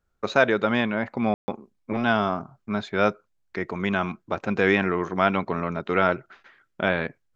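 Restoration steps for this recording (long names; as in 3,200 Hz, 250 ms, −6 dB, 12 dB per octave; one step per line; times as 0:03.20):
ambience match 0:01.34–0:01.48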